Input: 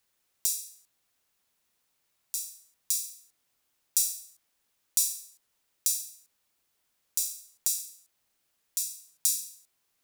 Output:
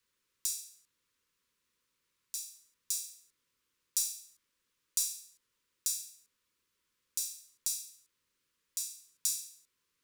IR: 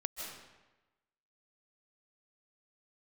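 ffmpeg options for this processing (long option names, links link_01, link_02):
-filter_complex "[0:a]highshelf=frequency=9000:gain=-9,acrossover=split=200|570|3800[link_01][link_02][link_03][link_04];[link_03]aeval=exprs='clip(val(0),-1,0.00224)':channel_layout=same[link_05];[link_01][link_02][link_05][link_04]amix=inputs=4:normalize=0,asuperstop=centerf=720:order=12:qfactor=2,volume=-1.5dB"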